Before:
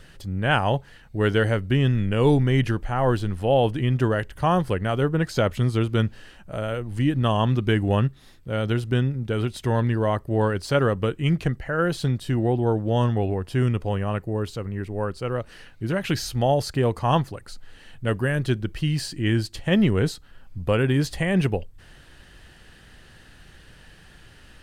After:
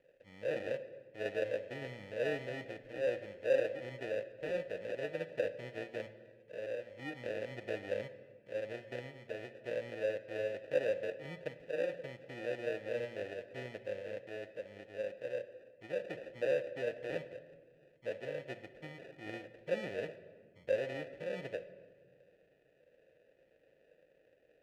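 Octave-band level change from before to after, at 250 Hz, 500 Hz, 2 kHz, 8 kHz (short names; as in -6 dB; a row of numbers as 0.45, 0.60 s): -24.5 dB, -11.0 dB, -14.0 dB, under -20 dB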